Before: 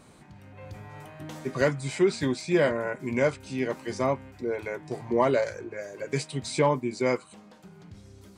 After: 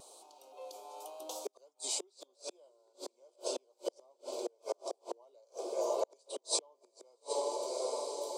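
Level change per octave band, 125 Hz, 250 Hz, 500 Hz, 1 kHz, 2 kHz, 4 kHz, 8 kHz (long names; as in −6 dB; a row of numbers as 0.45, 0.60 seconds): below −40 dB, −22.0 dB, −11.0 dB, −10.5 dB, −27.5 dB, −2.5 dB, +2.5 dB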